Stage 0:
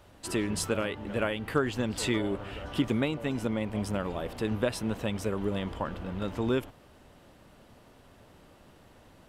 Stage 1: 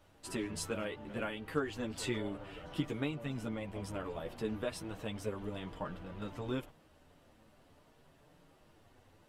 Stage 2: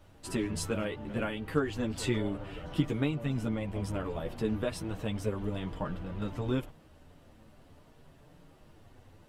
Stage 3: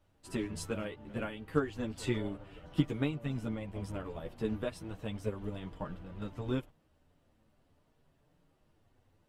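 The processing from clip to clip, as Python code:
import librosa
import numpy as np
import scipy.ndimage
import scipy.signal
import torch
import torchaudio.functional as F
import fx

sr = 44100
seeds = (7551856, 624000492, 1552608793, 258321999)

y1 = fx.chorus_voices(x, sr, voices=4, hz=0.32, base_ms=10, depth_ms=3.8, mix_pct=45)
y1 = y1 * 10.0 ** (-5.0 / 20.0)
y2 = fx.low_shelf(y1, sr, hz=240.0, db=7.5)
y2 = y2 * 10.0 ** (3.0 / 20.0)
y3 = fx.upward_expand(y2, sr, threshold_db=-49.0, expansion=1.5)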